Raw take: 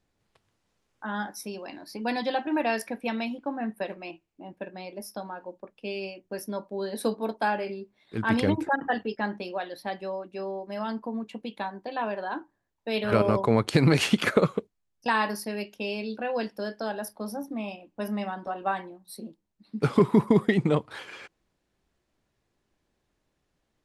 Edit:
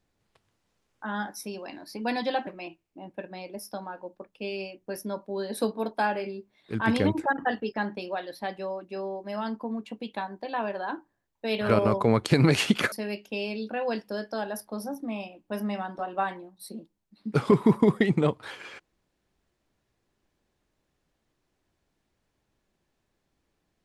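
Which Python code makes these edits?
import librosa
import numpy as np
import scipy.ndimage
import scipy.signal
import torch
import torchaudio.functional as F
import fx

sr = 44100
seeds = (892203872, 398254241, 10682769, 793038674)

y = fx.edit(x, sr, fx.cut(start_s=2.47, length_s=1.43),
    fx.cut(start_s=14.35, length_s=1.05), tone=tone)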